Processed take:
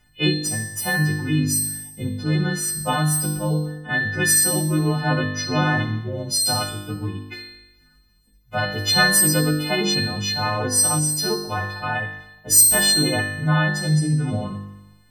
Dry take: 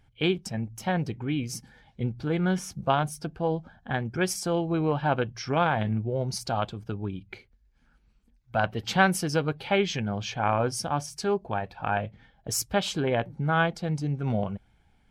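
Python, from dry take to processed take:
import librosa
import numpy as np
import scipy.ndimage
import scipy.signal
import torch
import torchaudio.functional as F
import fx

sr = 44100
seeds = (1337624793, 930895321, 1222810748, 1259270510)

y = fx.freq_snap(x, sr, grid_st=3)
y = fx.room_flutter(y, sr, wall_m=3.4, rt60_s=0.95)
y = y * 10.0 ** (2.5 / 20.0)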